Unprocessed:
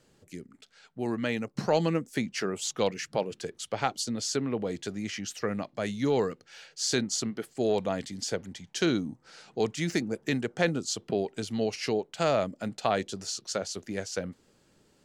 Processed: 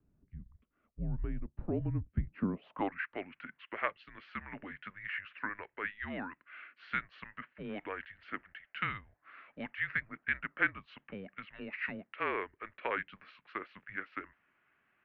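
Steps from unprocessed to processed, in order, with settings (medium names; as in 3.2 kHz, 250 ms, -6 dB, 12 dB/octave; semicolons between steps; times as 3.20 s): band-pass sweep 220 Hz -> 2 kHz, 2.05–3.07 s; mistuned SSB -200 Hz 270–2900 Hz; trim +4.5 dB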